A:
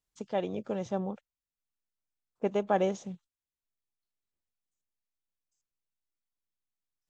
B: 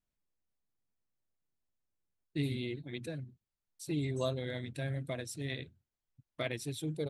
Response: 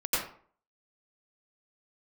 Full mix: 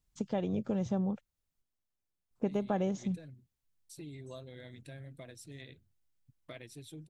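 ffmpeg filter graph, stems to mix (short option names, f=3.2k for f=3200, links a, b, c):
-filter_complex "[0:a]bass=f=250:g=13,treble=f=4k:g=2,volume=1dB,asplit=3[a][b][c];[a]atrim=end=1.62,asetpts=PTS-STARTPTS,afade=t=out:st=1.616:d=0.004:c=hsin[d];[b]atrim=start=1.62:end=2.31,asetpts=PTS-STARTPTS,volume=0[e];[c]atrim=start=2.31,asetpts=PTS-STARTPTS,afade=t=in:d=0.004:c=hsin[f];[d][e][f]concat=n=3:v=0:a=1[g];[1:a]acompressor=threshold=-49dB:ratio=2,adelay=100,volume=-2.5dB[h];[g][h]amix=inputs=2:normalize=0,acompressor=threshold=-31dB:ratio=3"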